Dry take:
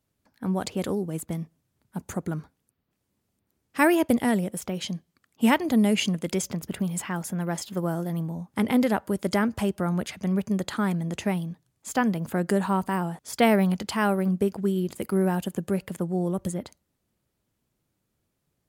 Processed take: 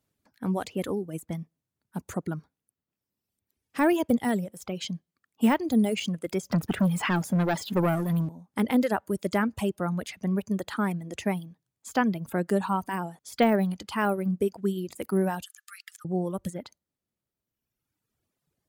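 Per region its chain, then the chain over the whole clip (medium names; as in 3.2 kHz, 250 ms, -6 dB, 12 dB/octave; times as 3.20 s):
6.52–8.29 s: high-pass 54 Hz + waveshaping leveller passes 3
15.43–16.05 s: rippled Chebyshev high-pass 1.2 kHz, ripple 3 dB + peaking EQ 5.7 kHz +5.5 dB 1.4 oct
whole clip: reverb removal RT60 1.7 s; bass shelf 64 Hz -7 dB; de-esser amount 75%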